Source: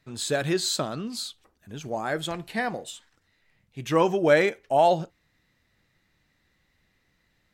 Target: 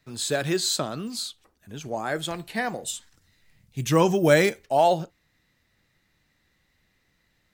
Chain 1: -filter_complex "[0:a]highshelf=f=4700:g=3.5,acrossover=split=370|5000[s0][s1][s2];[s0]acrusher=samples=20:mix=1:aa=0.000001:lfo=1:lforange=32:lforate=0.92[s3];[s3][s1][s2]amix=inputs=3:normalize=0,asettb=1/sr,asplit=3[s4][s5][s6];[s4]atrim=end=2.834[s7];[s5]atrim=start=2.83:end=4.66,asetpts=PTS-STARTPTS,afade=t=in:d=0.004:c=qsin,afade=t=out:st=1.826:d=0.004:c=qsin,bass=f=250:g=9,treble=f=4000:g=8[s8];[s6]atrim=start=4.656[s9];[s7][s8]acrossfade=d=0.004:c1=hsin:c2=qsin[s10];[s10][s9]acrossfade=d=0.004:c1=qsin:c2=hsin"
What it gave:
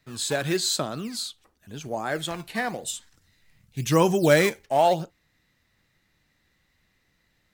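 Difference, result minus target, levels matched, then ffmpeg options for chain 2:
decimation with a swept rate: distortion +11 dB
-filter_complex "[0:a]highshelf=f=4700:g=3.5,acrossover=split=370|5000[s0][s1][s2];[s0]acrusher=samples=6:mix=1:aa=0.000001:lfo=1:lforange=9.6:lforate=0.92[s3];[s3][s1][s2]amix=inputs=3:normalize=0,asettb=1/sr,asplit=3[s4][s5][s6];[s4]atrim=end=2.834[s7];[s5]atrim=start=2.83:end=4.66,asetpts=PTS-STARTPTS,afade=t=in:d=0.004:c=qsin,afade=t=out:st=1.826:d=0.004:c=qsin,bass=f=250:g=9,treble=f=4000:g=8[s8];[s6]atrim=start=4.656[s9];[s7][s8]acrossfade=d=0.004:c1=hsin:c2=qsin[s10];[s10][s9]acrossfade=d=0.004:c1=qsin:c2=hsin"

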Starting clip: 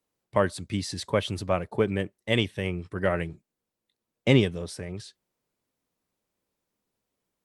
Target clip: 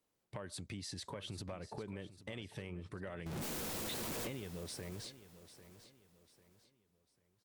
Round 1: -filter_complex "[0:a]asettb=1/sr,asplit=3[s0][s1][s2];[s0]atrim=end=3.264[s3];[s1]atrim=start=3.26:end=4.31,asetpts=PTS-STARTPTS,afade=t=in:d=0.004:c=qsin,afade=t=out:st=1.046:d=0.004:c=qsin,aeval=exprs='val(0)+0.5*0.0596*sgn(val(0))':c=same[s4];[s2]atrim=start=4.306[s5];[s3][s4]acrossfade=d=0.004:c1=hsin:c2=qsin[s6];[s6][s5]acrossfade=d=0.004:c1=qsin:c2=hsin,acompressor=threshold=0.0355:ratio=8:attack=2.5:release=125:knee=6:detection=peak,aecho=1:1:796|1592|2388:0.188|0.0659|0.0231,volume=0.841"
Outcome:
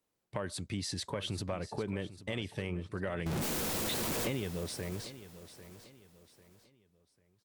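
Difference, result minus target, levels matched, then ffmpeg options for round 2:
compression: peak gain reduction -9 dB
-filter_complex "[0:a]asettb=1/sr,asplit=3[s0][s1][s2];[s0]atrim=end=3.264[s3];[s1]atrim=start=3.26:end=4.31,asetpts=PTS-STARTPTS,afade=t=in:d=0.004:c=qsin,afade=t=out:st=1.046:d=0.004:c=qsin,aeval=exprs='val(0)+0.5*0.0596*sgn(val(0))':c=same[s4];[s2]atrim=start=4.306[s5];[s3][s4]acrossfade=d=0.004:c1=hsin:c2=qsin[s6];[s6][s5]acrossfade=d=0.004:c1=qsin:c2=hsin,acompressor=threshold=0.0106:ratio=8:attack=2.5:release=125:knee=6:detection=peak,aecho=1:1:796|1592|2388:0.188|0.0659|0.0231,volume=0.841"

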